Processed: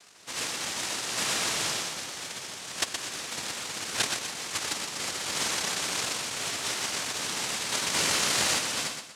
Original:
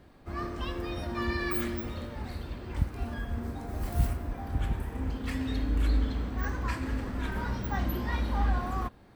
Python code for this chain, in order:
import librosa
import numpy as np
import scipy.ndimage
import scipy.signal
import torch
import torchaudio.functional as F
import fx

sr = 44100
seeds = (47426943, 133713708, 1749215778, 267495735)

y = fx.peak_eq(x, sr, hz=240.0, db=-3.5, octaves=0.77, at=(1.88, 3.43))
y = fx.noise_vocoder(y, sr, seeds[0], bands=1)
y = fx.echo_feedback(y, sr, ms=121, feedback_pct=33, wet_db=-6)
y = fx.env_flatten(y, sr, amount_pct=70, at=(7.93, 8.57), fade=0.02)
y = y * 10.0 ** (2.5 / 20.0)